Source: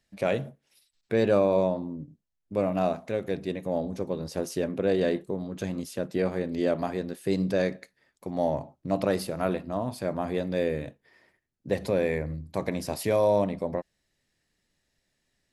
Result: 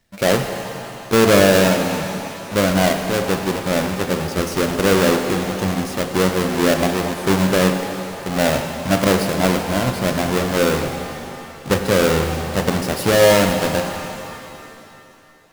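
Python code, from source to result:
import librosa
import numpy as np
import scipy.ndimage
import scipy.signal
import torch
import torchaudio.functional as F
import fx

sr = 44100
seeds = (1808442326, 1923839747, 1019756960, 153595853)

y = fx.halfwave_hold(x, sr)
y = fx.rev_shimmer(y, sr, seeds[0], rt60_s=2.8, semitones=7, shimmer_db=-8, drr_db=5.0)
y = y * 10.0 ** (5.0 / 20.0)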